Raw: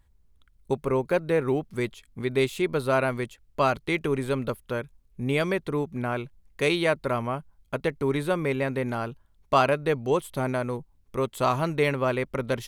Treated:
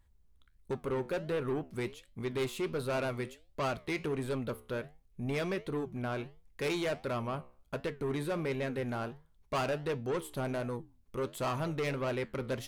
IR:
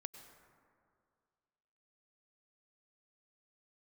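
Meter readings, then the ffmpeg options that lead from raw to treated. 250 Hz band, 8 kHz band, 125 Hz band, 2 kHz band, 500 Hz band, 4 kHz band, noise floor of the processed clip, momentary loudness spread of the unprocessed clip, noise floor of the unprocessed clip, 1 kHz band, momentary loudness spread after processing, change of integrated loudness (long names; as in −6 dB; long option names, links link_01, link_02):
−7.5 dB, −5.5 dB, −7.5 dB, −9.5 dB, −9.0 dB, −7.5 dB, −66 dBFS, 10 LU, −62 dBFS, −10.5 dB, 7 LU, −9.0 dB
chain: -af "asoftclip=type=tanh:threshold=-24dB,flanger=delay=9.3:depth=5.8:regen=-79:speed=1.4:shape=sinusoidal"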